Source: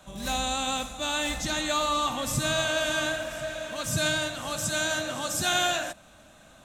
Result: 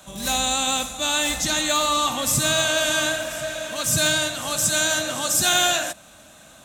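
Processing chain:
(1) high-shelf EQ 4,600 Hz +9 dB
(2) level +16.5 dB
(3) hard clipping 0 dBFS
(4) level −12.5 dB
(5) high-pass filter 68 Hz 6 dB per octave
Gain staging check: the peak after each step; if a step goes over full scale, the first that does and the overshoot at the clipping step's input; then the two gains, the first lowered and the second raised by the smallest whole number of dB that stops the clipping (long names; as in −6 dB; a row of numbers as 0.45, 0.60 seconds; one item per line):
−10.5, +6.0, 0.0, −12.5, −11.0 dBFS
step 2, 6.0 dB
step 2 +10.5 dB, step 4 −6.5 dB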